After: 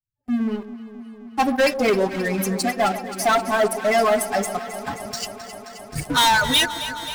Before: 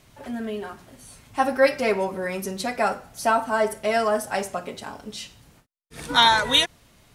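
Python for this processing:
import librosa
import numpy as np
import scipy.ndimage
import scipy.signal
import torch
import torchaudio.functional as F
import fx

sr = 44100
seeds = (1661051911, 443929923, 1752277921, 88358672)

y = fx.bin_expand(x, sr, power=2.0)
y = fx.over_compress(y, sr, threshold_db=-52.0, ratio=-1.0, at=(4.86, 6.02), fade=0.02)
y = fx.leveller(y, sr, passes=5)
y = fx.echo_alternate(y, sr, ms=132, hz=1000.0, feedback_pct=89, wet_db=-12)
y = y * 10.0 ** (-6.5 / 20.0)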